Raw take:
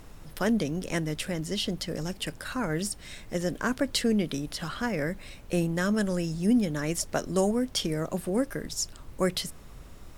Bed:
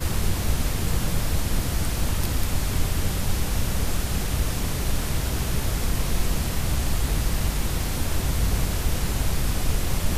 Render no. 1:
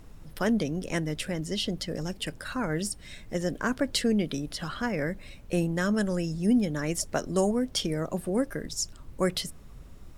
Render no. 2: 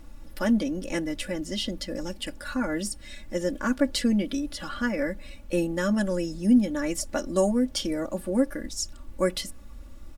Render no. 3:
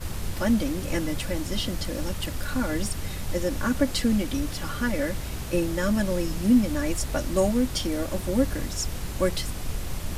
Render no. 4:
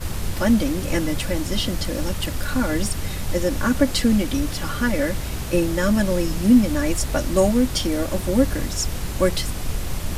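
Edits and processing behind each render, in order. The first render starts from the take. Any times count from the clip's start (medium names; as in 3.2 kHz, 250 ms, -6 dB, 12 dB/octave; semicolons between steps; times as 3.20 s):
noise reduction 6 dB, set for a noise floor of -47 dBFS
comb 3.5 ms, depth 88%; harmonic-percussive split percussive -3 dB
add bed -8 dB
trim +5 dB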